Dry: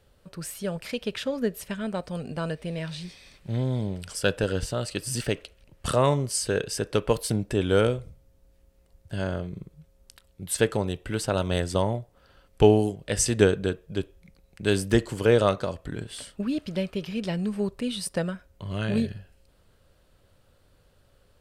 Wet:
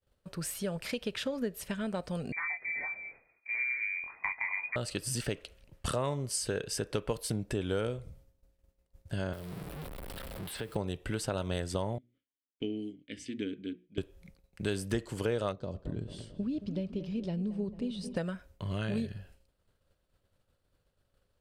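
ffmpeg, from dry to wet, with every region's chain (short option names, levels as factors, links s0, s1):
-filter_complex "[0:a]asettb=1/sr,asplit=3[s0][s1][s2];[s0]atrim=end=2.324[s3];[s1]atrim=start=2.32:end=4.76,asetpts=PTS-STARTPTS,afade=t=in:d=0.004:c=qsin,afade=t=out:st=2.436:d=0.004:c=qsin,flanger=delay=18.5:depth=5.6:speed=2.6,lowpass=f=2100:t=q:w=0.5098,lowpass=f=2100:t=q:w=0.6013,lowpass=f=2100:t=q:w=0.9,lowpass=f=2100:t=q:w=2.563,afreqshift=-2500[s4];[s2]atrim=start=4.756[s5];[s3][s4]acrossfade=d=0.004:c1=hsin:c2=qsin[s6];[s6][s5]acrossfade=d=0.004:c1=qsin:c2=hsin,asettb=1/sr,asplit=3[s7][s8][s9];[s7]atrim=end=9.334[s10];[s8]atrim=start=9.33:end=10.76,asetpts=PTS-STARTPTS,afade=t=in:d=0.004:c=qsin,afade=t=out:st=1.426:d=0.004:c=qsin,aeval=exprs='val(0)+0.5*0.0251*sgn(val(0))':c=same,equalizer=f=6500:t=o:w=0.54:g=-12.5,acrossover=split=210|4400[s11][s12][s13];[s11]acompressor=threshold=0.00562:ratio=4[s14];[s12]acompressor=threshold=0.00794:ratio=4[s15];[s13]acompressor=threshold=0.00355:ratio=4[s16];[s14][s15][s16]amix=inputs=3:normalize=0[s17];[s9]atrim=start=10.756[s18];[s10][s17]acrossfade=d=0.004:c1=hsin:c2=qsin[s19];[s19][s18]acrossfade=d=0.004:c1=qsin:c2=hsin,asettb=1/sr,asplit=3[s20][s21][s22];[s20]atrim=end=11.984[s23];[s21]atrim=start=11.98:end=13.98,asetpts=PTS-STARTPTS,afade=t=in:d=0.004:c=qsin,afade=t=out:st=1.996:d=0.004:c=qsin,asplit=3[s24][s25][s26];[s24]bandpass=f=270:t=q:w=8,volume=1[s27];[s25]bandpass=f=2290:t=q:w=8,volume=0.501[s28];[s26]bandpass=f=3010:t=q:w=8,volume=0.355[s29];[s27][s28][s29]amix=inputs=3:normalize=0,bandreject=f=60:t=h:w=6,bandreject=f=120:t=h:w=6,bandreject=f=180:t=h:w=6,bandreject=f=240:t=h:w=6,bandreject=f=300:t=h:w=6,bandreject=f=360:t=h:w=6[s30];[s22]atrim=start=13.976[s31];[s23][s30]acrossfade=d=0.004:c1=hsin:c2=qsin[s32];[s32][s31]acrossfade=d=0.004:c1=qsin:c2=hsin,asettb=1/sr,asplit=3[s33][s34][s35];[s33]atrim=end=15.524[s36];[s34]atrim=start=15.52:end=18.16,asetpts=PTS-STARTPTS,afade=t=in:d=0.004:c=qsin,afade=t=out:st=2.636:d=0.004:c=qsin,lowpass=4100,equalizer=f=1700:w=0.51:g=-15,asplit=2[s37][s38];[s38]adelay=222,lowpass=f=1900:p=1,volume=0.224,asplit=2[s39][s40];[s40]adelay=222,lowpass=f=1900:p=1,volume=0.54,asplit=2[s41][s42];[s42]adelay=222,lowpass=f=1900:p=1,volume=0.54,asplit=2[s43][s44];[s44]adelay=222,lowpass=f=1900:p=1,volume=0.54,asplit=2[s45][s46];[s46]adelay=222,lowpass=f=1900:p=1,volume=0.54,asplit=2[s47][s48];[s48]adelay=222,lowpass=f=1900:p=1,volume=0.54[s49];[s37][s39][s41][s43][s45][s47][s49]amix=inputs=7:normalize=0,atrim=end_sample=116424[s50];[s35]atrim=start=18.156[s51];[s36][s50]acrossfade=d=0.004:c1=hsin:c2=qsin[s52];[s52][s51]acrossfade=d=0.004:c1=qsin:c2=hsin,agate=range=0.0224:threshold=0.00316:ratio=3:detection=peak,acompressor=threshold=0.0251:ratio=3"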